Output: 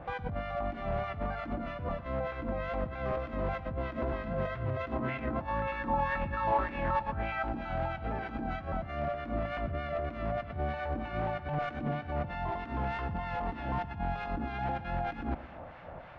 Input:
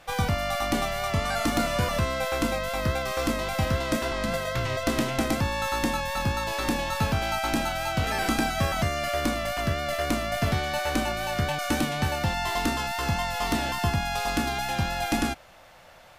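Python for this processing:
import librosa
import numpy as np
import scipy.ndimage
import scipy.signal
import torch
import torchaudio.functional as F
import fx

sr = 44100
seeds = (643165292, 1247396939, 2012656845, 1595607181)

y = scipy.signal.sosfilt(scipy.signal.butter(2, 41.0, 'highpass', fs=sr, output='sos'), x)
y = fx.bass_treble(y, sr, bass_db=3, treble_db=-13)
y = fx.over_compress(y, sr, threshold_db=-34.0, ratio=-1.0)
y = fx.harmonic_tremolo(y, sr, hz=3.2, depth_pct=70, crossover_hz=1200.0)
y = 10.0 ** (-28.0 / 20.0) * (np.abs((y / 10.0 ** (-28.0 / 20.0) + 3.0) % 4.0 - 2.0) - 1.0)
y = fx.spacing_loss(y, sr, db_at_10k=40)
y = fx.echo_feedback(y, sr, ms=120, feedback_pct=54, wet_db=-16)
y = fx.bell_lfo(y, sr, hz=1.9, low_hz=780.0, high_hz=2500.0, db=11, at=(4.92, 7.43))
y = y * librosa.db_to_amplitude(4.5)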